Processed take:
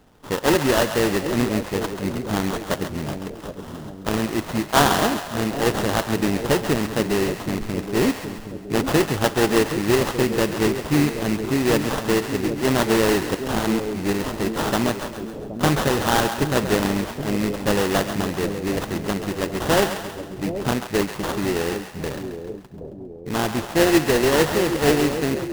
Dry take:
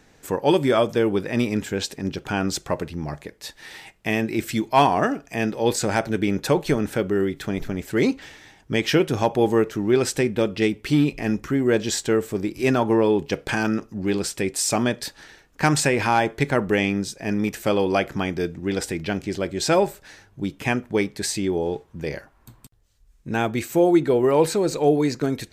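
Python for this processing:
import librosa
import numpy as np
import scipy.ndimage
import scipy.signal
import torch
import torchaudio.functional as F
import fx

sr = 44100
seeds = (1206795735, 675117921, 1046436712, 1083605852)

y = fx.bit_reversed(x, sr, seeds[0], block=16)
y = fx.sample_hold(y, sr, seeds[1], rate_hz=2300.0, jitter_pct=20)
y = fx.echo_split(y, sr, split_hz=610.0, low_ms=772, high_ms=135, feedback_pct=52, wet_db=-8.5)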